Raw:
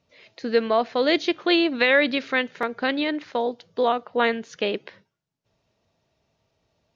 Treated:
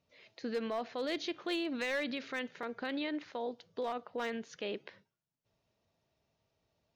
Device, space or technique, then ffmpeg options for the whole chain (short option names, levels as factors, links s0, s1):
clipper into limiter: -af "asoftclip=type=hard:threshold=0.211,alimiter=limit=0.0944:level=0:latency=1:release=40,volume=0.376"